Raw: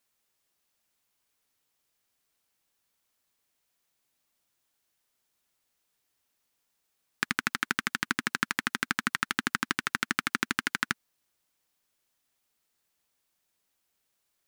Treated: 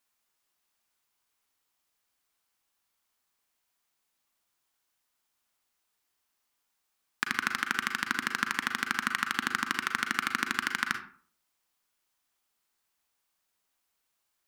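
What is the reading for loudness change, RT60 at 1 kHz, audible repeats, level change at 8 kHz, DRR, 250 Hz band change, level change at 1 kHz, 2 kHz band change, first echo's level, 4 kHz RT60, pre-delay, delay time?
0.0 dB, 0.45 s, no echo, -1.5 dB, 5.5 dB, -3.5 dB, +1.5 dB, +0.5 dB, no echo, 0.25 s, 35 ms, no echo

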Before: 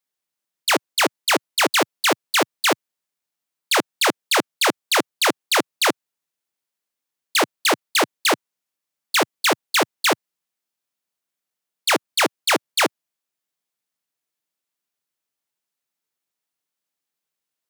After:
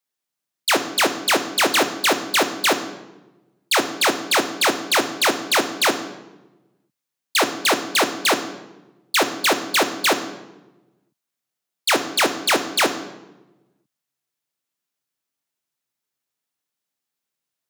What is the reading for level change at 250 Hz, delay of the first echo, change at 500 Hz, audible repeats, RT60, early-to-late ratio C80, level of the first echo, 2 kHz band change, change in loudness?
+1.5 dB, no echo, +1.0 dB, no echo, 1.1 s, 13.0 dB, no echo, +0.5 dB, +0.5 dB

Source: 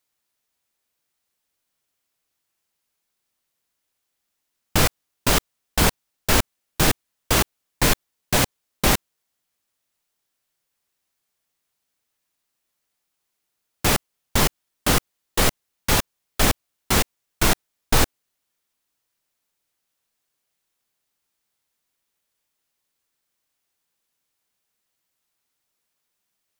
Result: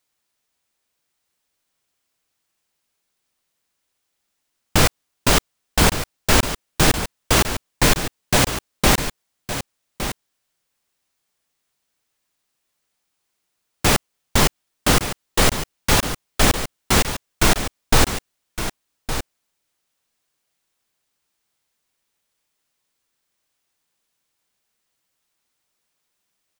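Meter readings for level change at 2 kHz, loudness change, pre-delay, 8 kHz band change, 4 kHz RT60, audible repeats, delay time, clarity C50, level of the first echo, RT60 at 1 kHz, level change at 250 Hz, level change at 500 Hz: +3.5 dB, +2.0 dB, no reverb, +3.0 dB, no reverb, 1, 1163 ms, no reverb, -10.5 dB, no reverb, +3.5 dB, +3.5 dB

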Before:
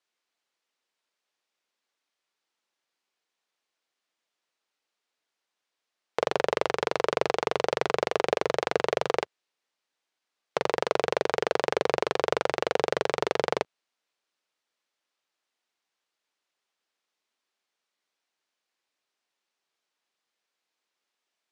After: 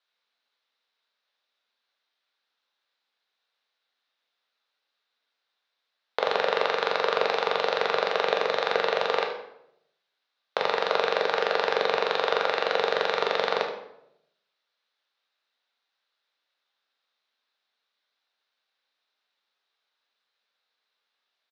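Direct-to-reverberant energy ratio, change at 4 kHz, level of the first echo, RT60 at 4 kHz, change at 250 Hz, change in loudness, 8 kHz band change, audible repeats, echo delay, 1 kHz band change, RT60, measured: 2.0 dB, +5.5 dB, -11.5 dB, 0.55 s, -6.0 dB, +2.0 dB, no reading, 1, 75 ms, +3.0 dB, 0.80 s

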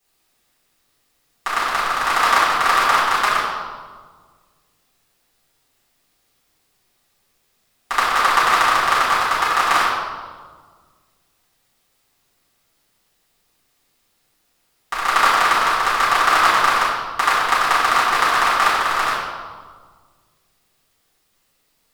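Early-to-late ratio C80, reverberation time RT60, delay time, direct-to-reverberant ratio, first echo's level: 2.0 dB, 1.6 s, no echo, -12.5 dB, no echo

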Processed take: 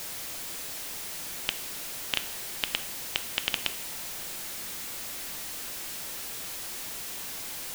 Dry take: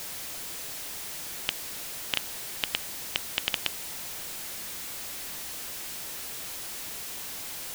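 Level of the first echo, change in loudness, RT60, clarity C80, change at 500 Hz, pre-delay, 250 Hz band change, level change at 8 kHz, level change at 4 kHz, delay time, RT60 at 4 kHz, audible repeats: no echo, 0.0 dB, 1.0 s, 15.5 dB, +0.5 dB, 3 ms, +1.0 dB, 0.0 dB, 0.0 dB, no echo, 0.60 s, no echo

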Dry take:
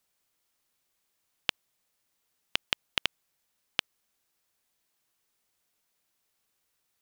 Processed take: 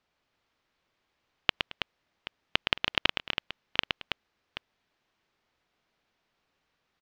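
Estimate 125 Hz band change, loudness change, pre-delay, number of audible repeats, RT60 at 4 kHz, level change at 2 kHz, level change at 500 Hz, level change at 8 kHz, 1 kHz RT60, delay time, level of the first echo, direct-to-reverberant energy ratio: +8.0 dB, +2.0 dB, no reverb, 4, no reverb, +5.5 dB, +7.5 dB, -8.5 dB, no reverb, 116 ms, -6.0 dB, no reverb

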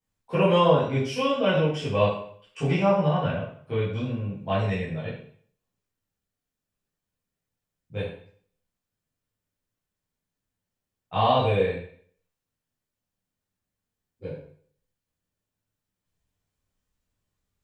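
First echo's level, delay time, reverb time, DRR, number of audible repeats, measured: no echo, no echo, 0.55 s, -10.5 dB, no echo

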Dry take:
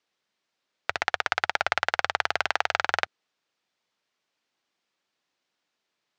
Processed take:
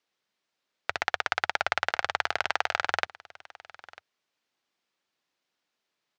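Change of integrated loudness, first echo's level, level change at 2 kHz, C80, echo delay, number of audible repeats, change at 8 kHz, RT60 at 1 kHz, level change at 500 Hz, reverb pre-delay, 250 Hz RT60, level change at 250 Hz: -2.0 dB, -21.0 dB, -2.0 dB, no reverb, 947 ms, 1, -2.0 dB, no reverb, -2.0 dB, no reverb, no reverb, -2.0 dB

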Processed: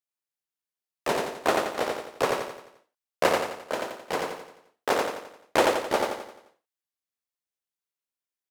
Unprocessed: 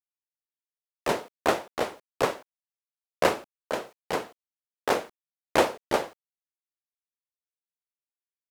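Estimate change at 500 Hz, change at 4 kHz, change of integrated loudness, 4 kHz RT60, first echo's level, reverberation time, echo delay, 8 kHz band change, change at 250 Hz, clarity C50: +1.5 dB, +2.0 dB, +1.0 dB, no reverb, -3.0 dB, no reverb, 87 ms, +2.0 dB, +0.5 dB, no reverb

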